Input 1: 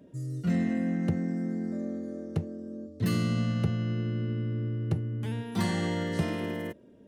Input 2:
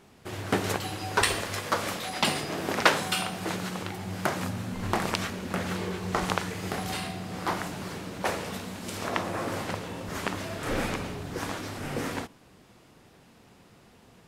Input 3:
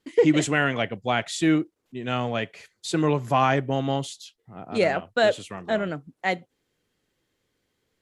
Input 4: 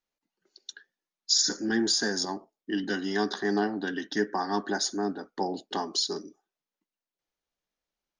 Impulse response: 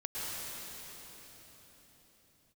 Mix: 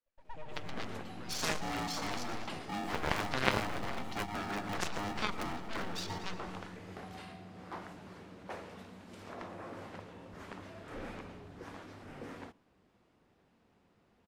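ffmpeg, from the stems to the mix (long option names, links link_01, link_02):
-filter_complex "[0:a]adelay=200,volume=-13.5dB[link_01];[1:a]asoftclip=type=tanh:threshold=-17dB,adelay=250,volume=-4dB[link_02];[2:a]aeval=exprs='abs(val(0))':channel_layout=same,volume=-1.5dB,asplit=2[link_03][link_04];[link_04]volume=-13.5dB[link_05];[3:a]equalizer=frequency=190:width_type=o:width=0.27:gain=6.5,aeval=exprs='val(0)*sgn(sin(2*PI*510*n/s))':channel_layout=same,volume=2.5dB,asplit=3[link_06][link_07][link_08];[link_07]volume=-11dB[link_09];[link_08]apad=whole_len=353523[link_10];[link_03][link_10]sidechaingate=range=-35dB:threshold=-51dB:ratio=16:detection=peak[link_11];[link_05][link_09]amix=inputs=2:normalize=0,aecho=0:1:117|234|351|468|585|702|819|936:1|0.56|0.314|0.176|0.0983|0.0551|0.0308|0.0173[link_12];[link_01][link_02][link_11][link_06][link_12]amix=inputs=5:normalize=0,lowpass=frequency=2300:poles=1,equalizer=frequency=130:width=3.7:gain=-6,aeval=exprs='0.447*(cos(1*acos(clip(val(0)/0.447,-1,1)))-cos(1*PI/2))+0.178*(cos(3*acos(clip(val(0)/0.447,-1,1)))-cos(3*PI/2))+0.0112*(cos(7*acos(clip(val(0)/0.447,-1,1)))-cos(7*PI/2))':channel_layout=same"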